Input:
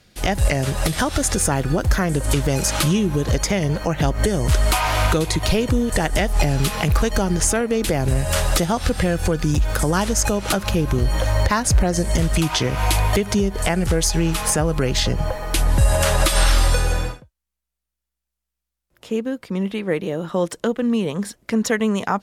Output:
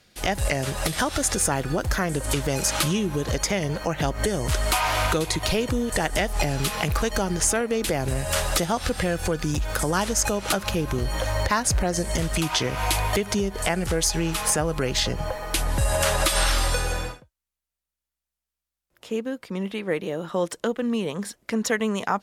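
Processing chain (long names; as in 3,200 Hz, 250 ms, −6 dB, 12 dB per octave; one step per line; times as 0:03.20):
low-shelf EQ 280 Hz −6.5 dB
level −2 dB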